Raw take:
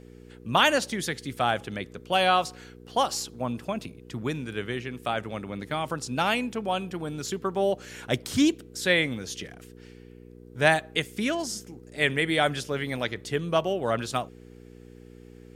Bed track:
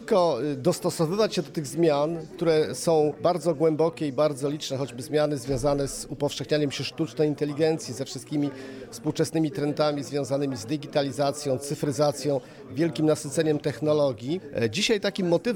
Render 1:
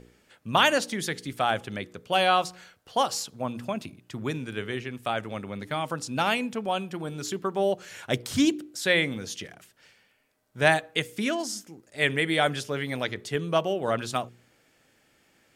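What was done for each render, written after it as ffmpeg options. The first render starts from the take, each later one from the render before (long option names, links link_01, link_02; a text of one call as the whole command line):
ffmpeg -i in.wav -af "bandreject=frequency=60:width_type=h:width=4,bandreject=frequency=120:width_type=h:width=4,bandreject=frequency=180:width_type=h:width=4,bandreject=frequency=240:width_type=h:width=4,bandreject=frequency=300:width_type=h:width=4,bandreject=frequency=360:width_type=h:width=4,bandreject=frequency=420:width_type=h:width=4,bandreject=frequency=480:width_type=h:width=4" out.wav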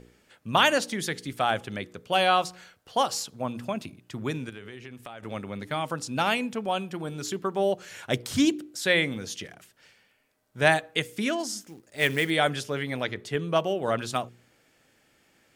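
ffmpeg -i in.wav -filter_complex "[0:a]asettb=1/sr,asplit=3[link_01][link_02][link_03];[link_01]atrim=end=4.494[link_04];[link_02]atrim=start=4.49:end=5.23,asetpts=PTS-STARTPTS,afade=type=in:duration=0.004:curve=qsin,afade=type=out:start_time=0.736:duration=0.004:curve=qsin,acompressor=threshold=-38dB:ratio=6:attack=3.2:release=140:knee=1:detection=peak[link_05];[link_03]atrim=start=5.226[link_06];[link_04][link_05]acrossfade=duration=0.004:curve1=hsin:curve2=qsin[link_07];[link_07][link_06]acrossfade=duration=0.004:curve1=qsin:curve2=hsin,asplit=3[link_08][link_09][link_10];[link_08]afade=type=out:start_time=11.62:duration=0.02[link_11];[link_09]acrusher=bits=4:mode=log:mix=0:aa=0.000001,afade=type=in:start_time=11.62:duration=0.02,afade=type=out:start_time=12.29:duration=0.02[link_12];[link_10]afade=type=in:start_time=12.29:duration=0.02[link_13];[link_11][link_12][link_13]amix=inputs=3:normalize=0,asettb=1/sr,asplit=3[link_14][link_15][link_16];[link_14]atrim=end=12.834[link_17];[link_15]atrim=start=12.83:end=13.56,asetpts=PTS-STARTPTS,afade=type=in:duration=0.004:curve=qsin,afade=type=out:start_time=0.726:duration=0.004:curve=qsin,bass=frequency=250:gain=0,treble=frequency=4000:gain=-4[link_18];[link_16]atrim=start=13.556[link_19];[link_17][link_18]acrossfade=duration=0.004:curve1=hsin:curve2=qsin[link_20];[link_20][link_19]acrossfade=duration=0.004:curve1=qsin:curve2=hsin" out.wav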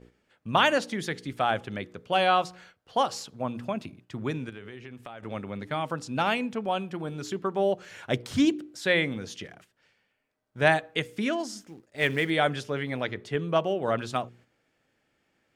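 ffmpeg -i in.wav -af "lowpass=frequency=3100:poles=1,agate=range=-7dB:threshold=-53dB:ratio=16:detection=peak" out.wav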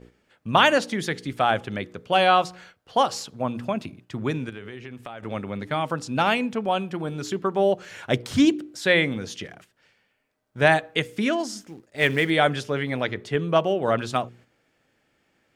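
ffmpeg -i in.wav -af "volume=4.5dB,alimiter=limit=-3dB:level=0:latency=1" out.wav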